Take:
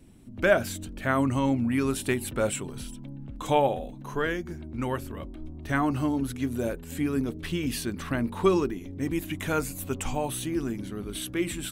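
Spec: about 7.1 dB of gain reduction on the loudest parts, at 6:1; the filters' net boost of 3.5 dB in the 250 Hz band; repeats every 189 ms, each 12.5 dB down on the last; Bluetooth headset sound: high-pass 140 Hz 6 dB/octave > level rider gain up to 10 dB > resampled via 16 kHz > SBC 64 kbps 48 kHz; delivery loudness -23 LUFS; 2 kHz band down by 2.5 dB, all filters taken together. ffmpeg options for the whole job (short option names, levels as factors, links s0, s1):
-af "equalizer=f=250:t=o:g=5.5,equalizer=f=2000:t=o:g=-3.5,acompressor=threshold=0.0708:ratio=6,highpass=f=140:p=1,aecho=1:1:189|378|567:0.237|0.0569|0.0137,dynaudnorm=m=3.16,aresample=16000,aresample=44100,volume=2.51" -ar 48000 -c:a sbc -b:a 64k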